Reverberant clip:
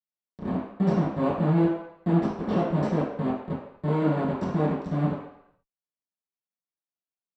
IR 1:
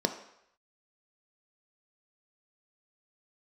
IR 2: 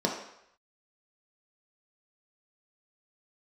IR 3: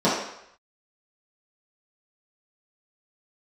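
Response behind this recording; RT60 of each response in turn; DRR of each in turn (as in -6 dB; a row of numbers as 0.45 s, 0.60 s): 3; 0.75 s, 0.75 s, 0.75 s; 6.5 dB, -1.0 dB, -10.5 dB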